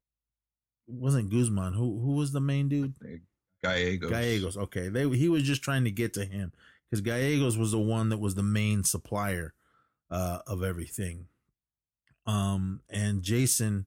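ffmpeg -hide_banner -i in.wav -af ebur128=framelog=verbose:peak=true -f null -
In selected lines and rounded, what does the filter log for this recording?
Integrated loudness:
  I:         -29.4 LUFS
  Threshold: -39.9 LUFS
Loudness range:
  LRA:         5.7 LU
  Threshold: -50.4 LUFS
  LRA low:   -34.8 LUFS
  LRA high:  -29.1 LUFS
True peak:
  Peak:      -13.0 dBFS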